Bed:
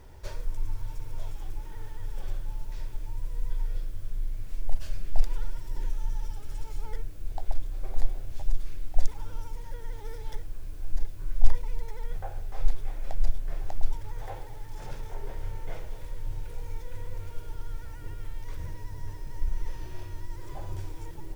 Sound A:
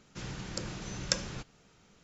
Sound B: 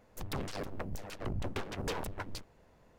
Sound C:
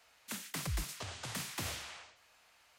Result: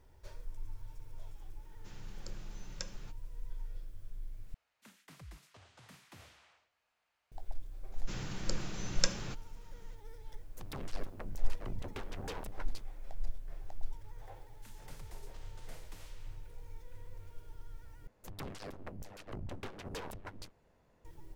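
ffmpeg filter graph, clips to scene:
-filter_complex "[1:a]asplit=2[s0][s1];[3:a]asplit=2[s2][s3];[2:a]asplit=2[s4][s5];[0:a]volume=0.237[s6];[s2]highshelf=f=4100:g=-9.5[s7];[s6]asplit=3[s8][s9][s10];[s8]atrim=end=4.544[s11];[s7]atrim=end=2.78,asetpts=PTS-STARTPTS,volume=0.2[s12];[s9]atrim=start=7.316:end=18.074[s13];[s5]atrim=end=2.98,asetpts=PTS-STARTPTS,volume=0.473[s14];[s10]atrim=start=21.046[s15];[s0]atrim=end=2.03,asetpts=PTS-STARTPTS,volume=0.2,afade=t=in:d=0.004:c=hsin,afade=t=out:st=2.026:d=0.004:c=hsin,adelay=1690[s16];[s1]atrim=end=2.03,asetpts=PTS-STARTPTS,volume=0.841,afade=t=in:d=0.004:c=hsin,afade=t=out:st=2.026:d=0.004:c=hsin,adelay=7920[s17];[s4]atrim=end=2.98,asetpts=PTS-STARTPTS,volume=0.473,afade=t=in:d=0.004:c=hsin,afade=t=out:st=2.976:d=0.004:c=hsin,adelay=10400[s18];[s3]atrim=end=2.78,asetpts=PTS-STARTPTS,volume=0.133,afade=t=in:d=0.004:c=hsin,afade=t=out:st=2.776:d=0.004:c=hsin,adelay=14340[s19];[s11][s12]acrossfade=d=0.004:c1=hsin:c2=hsin[s20];[s20][s13]acrossfade=d=0.004:c1=hsin:c2=hsin[s21];[s21][s14]acrossfade=d=0.004:c1=hsin:c2=hsin[s22];[s22][s15]acrossfade=d=0.004:c1=hsin:c2=hsin[s23];[s23][s16][s17][s18][s19]amix=inputs=5:normalize=0"

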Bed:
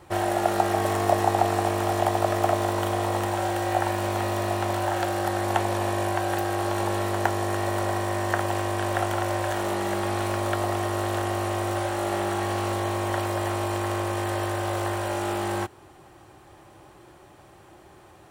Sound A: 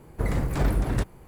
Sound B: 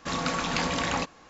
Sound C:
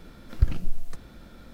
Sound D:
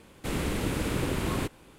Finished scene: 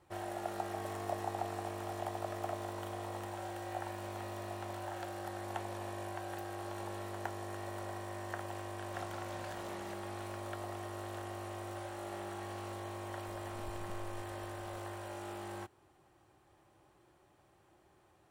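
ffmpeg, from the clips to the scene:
-filter_complex "[0:a]volume=0.15[s0];[2:a]acompressor=threshold=0.0251:ratio=6:attack=3.2:release=140:knee=1:detection=peak[s1];[3:a]acompressor=threshold=0.0316:ratio=6:attack=3.2:release=140:knee=1:detection=peak[s2];[s1]atrim=end=1.29,asetpts=PTS-STARTPTS,volume=0.133,afade=t=in:d=0.004:c=hsin,afade=t=out:st=1.286:d=0.004:c=hsin,adelay=8880[s3];[s2]atrim=end=1.53,asetpts=PTS-STARTPTS,volume=0.237,afade=t=in:d=0.004:c=hsin,afade=t=out:st=1.526:d=0.004:c=hsin,adelay=13260[s4];[s0][s3][s4]amix=inputs=3:normalize=0"

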